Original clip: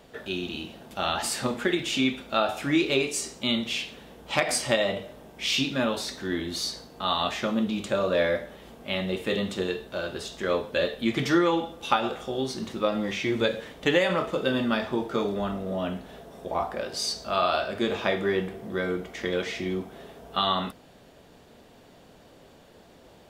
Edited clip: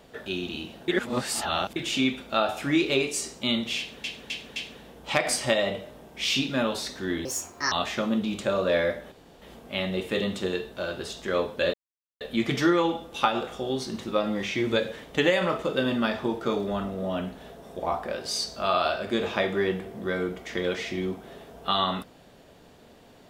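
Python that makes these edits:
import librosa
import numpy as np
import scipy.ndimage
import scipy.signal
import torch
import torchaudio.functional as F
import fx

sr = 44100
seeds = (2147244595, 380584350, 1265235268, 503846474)

y = fx.edit(x, sr, fx.reverse_span(start_s=0.88, length_s=0.88),
    fx.repeat(start_s=3.78, length_s=0.26, count=4),
    fx.speed_span(start_s=6.47, length_s=0.7, speed=1.5),
    fx.insert_room_tone(at_s=8.57, length_s=0.3),
    fx.insert_silence(at_s=10.89, length_s=0.47), tone=tone)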